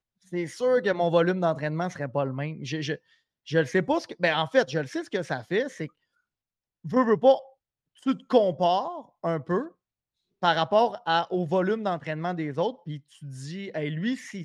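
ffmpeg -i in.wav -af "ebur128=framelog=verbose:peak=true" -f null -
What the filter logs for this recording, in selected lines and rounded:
Integrated loudness:
  I:         -26.4 LUFS
  Threshold: -36.9 LUFS
Loudness range:
  LRA:         2.5 LU
  Threshold: -47.1 LUFS
  LRA low:   -28.3 LUFS
  LRA high:  -25.8 LUFS
True peak:
  Peak:       -6.7 dBFS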